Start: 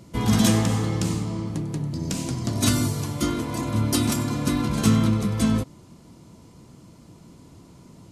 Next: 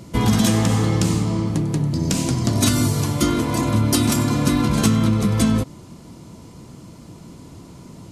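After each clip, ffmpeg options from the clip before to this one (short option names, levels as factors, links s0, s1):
-af "acompressor=threshold=0.0891:ratio=5,volume=2.37"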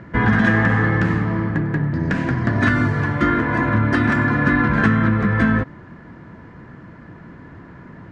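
-af "lowpass=f=1700:t=q:w=10"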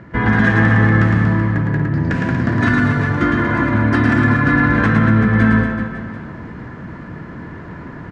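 -af "areverse,acompressor=mode=upward:threshold=0.0562:ratio=2.5,areverse,aecho=1:1:110|236.5|382|549.3|741.7:0.631|0.398|0.251|0.158|0.1"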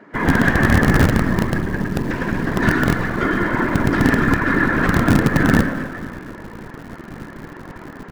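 -filter_complex "[0:a]afftfilt=real='hypot(re,im)*cos(2*PI*random(0))':imag='hypot(re,im)*sin(2*PI*random(1))':win_size=512:overlap=0.75,acrossover=split=200[s0][s1];[s0]acrusher=bits=4:dc=4:mix=0:aa=0.000001[s2];[s2][s1]amix=inputs=2:normalize=0,volume=1.58"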